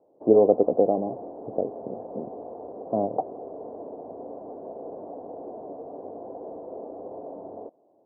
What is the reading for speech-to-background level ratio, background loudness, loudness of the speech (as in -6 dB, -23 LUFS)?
15.5 dB, -39.5 LUFS, -24.0 LUFS